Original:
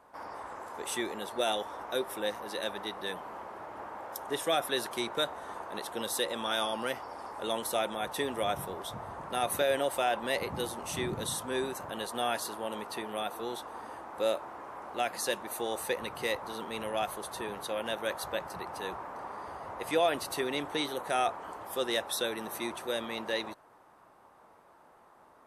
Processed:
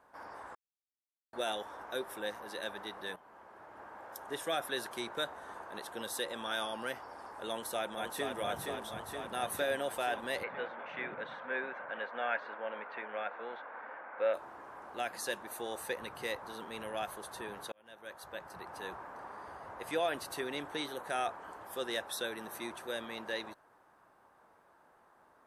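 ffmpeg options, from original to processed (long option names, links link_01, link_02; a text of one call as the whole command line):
ffmpeg -i in.wav -filter_complex "[0:a]asplit=2[link_01][link_02];[link_02]afade=type=in:start_time=7.5:duration=0.01,afade=type=out:start_time=8.36:duration=0.01,aecho=0:1:470|940|1410|1880|2350|2820|3290|3760|4230|4700|5170|5640:0.595662|0.446747|0.33506|0.251295|0.188471|0.141353|0.106015|0.0795113|0.0596335|0.0447251|0.0335438|0.0251579[link_03];[link_01][link_03]amix=inputs=2:normalize=0,asplit=3[link_04][link_05][link_06];[link_04]afade=type=out:start_time=10.42:duration=0.02[link_07];[link_05]highpass=290,equalizer=frequency=360:width_type=q:width=4:gain=-8,equalizer=frequency=540:width_type=q:width=4:gain=6,equalizer=frequency=1500:width_type=q:width=4:gain=7,equalizer=frequency=2200:width_type=q:width=4:gain=9,lowpass=frequency=2700:width=0.5412,lowpass=frequency=2700:width=1.3066,afade=type=in:start_time=10.42:duration=0.02,afade=type=out:start_time=14.33:duration=0.02[link_08];[link_06]afade=type=in:start_time=14.33:duration=0.02[link_09];[link_07][link_08][link_09]amix=inputs=3:normalize=0,asplit=5[link_10][link_11][link_12][link_13][link_14];[link_10]atrim=end=0.55,asetpts=PTS-STARTPTS,afade=type=out:start_time=0.546:duration=0.004:curve=hsin[link_15];[link_11]atrim=start=0.55:end=1.33,asetpts=PTS-STARTPTS,volume=0[link_16];[link_12]atrim=start=1.33:end=3.16,asetpts=PTS-STARTPTS,afade=type=in:duration=0.004:curve=hsin,afade=type=out:start_time=1.826:duration=0.004:curve=hsin:silence=0.237137[link_17];[link_13]atrim=start=3.16:end=17.72,asetpts=PTS-STARTPTS,afade=type=in:duration=1.48:curve=qsin:silence=0.237137,afade=type=out:start_time=14.556:duration=0.004:curve=hsin[link_18];[link_14]atrim=start=17.72,asetpts=PTS-STARTPTS,afade=type=in:duration=1.08[link_19];[link_15][link_16][link_17][link_18][link_19]concat=n=5:v=0:a=1,equalizer=frequency=1600:width_type=o:width=0.27:gain=6.5,volume=-6dB" out.wav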